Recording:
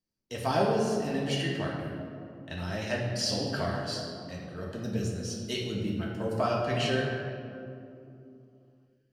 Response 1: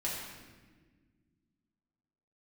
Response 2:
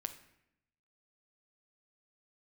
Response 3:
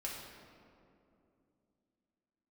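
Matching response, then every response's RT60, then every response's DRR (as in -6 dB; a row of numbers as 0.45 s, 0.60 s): 3; 1.5 s, 0.80 s, 2.7 s; -6.5 dB, 7.5 dB, -4.5 dB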